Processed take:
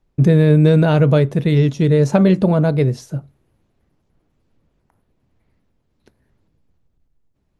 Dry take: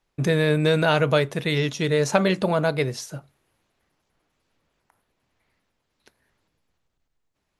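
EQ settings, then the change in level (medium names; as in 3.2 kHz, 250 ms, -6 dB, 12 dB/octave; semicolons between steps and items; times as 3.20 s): tilt shelf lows +5 dB, about 650 Hz; bass shelf 400 Hz +8.5 dB; 0.0 dB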